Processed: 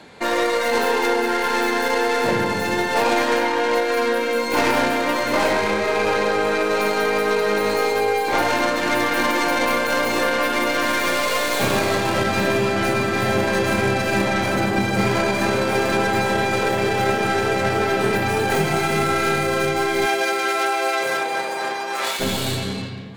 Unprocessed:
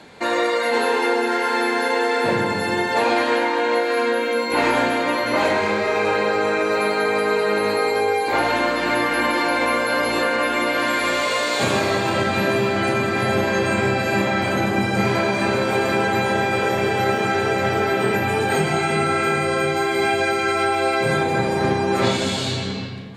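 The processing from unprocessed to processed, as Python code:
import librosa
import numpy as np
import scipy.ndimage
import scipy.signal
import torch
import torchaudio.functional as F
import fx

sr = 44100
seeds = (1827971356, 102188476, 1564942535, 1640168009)

y = fx.tracing_dist(x, sr, depth_ms=0.11)
y = fx.highpass(y, sr, hz=fx.line((20.05, 310.0), (22.19, 890.0)), slope=12, at=(20.05, 22.19), fade=0.02)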